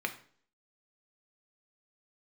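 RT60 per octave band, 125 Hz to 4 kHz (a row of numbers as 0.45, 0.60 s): 0.55, 0.60, 0.55, 0.50, 0.45, 0.45 s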